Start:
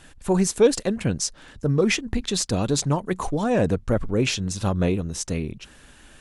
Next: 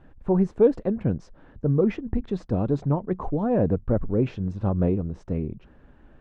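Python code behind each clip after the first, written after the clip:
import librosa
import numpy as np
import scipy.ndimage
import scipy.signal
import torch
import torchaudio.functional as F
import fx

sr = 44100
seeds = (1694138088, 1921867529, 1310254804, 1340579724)

y = scipy.signal.sosfilt(scipy.signal.bessel(2, 730.0, 'lowpass', norm='mag', fs=sr, output='sos'), x)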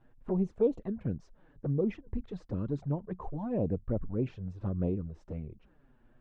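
y = fx.env_flanger(x, sr, rest_ms=9.2, full_db=-17.0)
y = F.gain(torch.from_numpy(y), -8.0).numpy()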